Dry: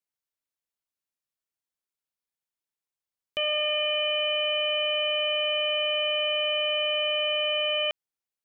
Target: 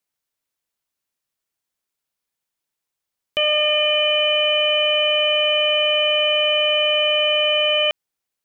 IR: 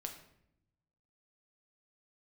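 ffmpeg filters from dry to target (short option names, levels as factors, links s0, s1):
-af "acontrast=64,volume=1.26"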